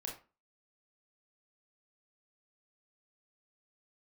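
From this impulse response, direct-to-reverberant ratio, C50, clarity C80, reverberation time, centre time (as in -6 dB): -1.5 dB, 7.0 dB, 13.5 dB, 0.30 s, 27 ms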